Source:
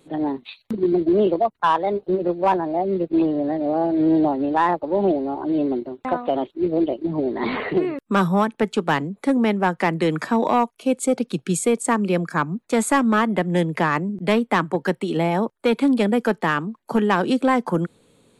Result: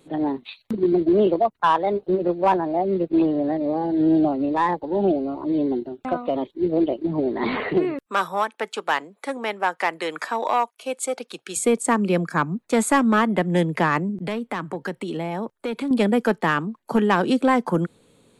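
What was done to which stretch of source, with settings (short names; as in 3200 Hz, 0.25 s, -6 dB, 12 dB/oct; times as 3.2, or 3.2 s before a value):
3.57–6.7 cascading phaser falling 1.1 Hz
8.06–11.57 HPF 620 Hz
14.19–15.91 compressor 3:1, threshold -26 dBFS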